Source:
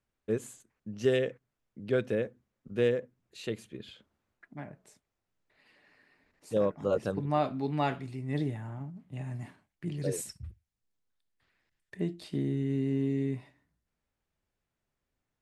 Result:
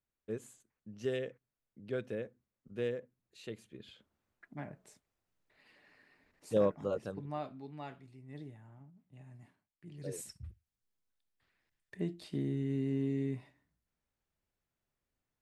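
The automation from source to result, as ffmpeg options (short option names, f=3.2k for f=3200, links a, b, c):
-af "volume=11dB,afade=t=in:st=3.63:d=1.02:silence=0.398107,afade=t=out:st=6.67:d=0.28:silence=0.446684,afade=t=out:st=6.95:d=0.75:silence=0.398107,afade=t=in:st=9.88:d=0.56:silence=0.251189"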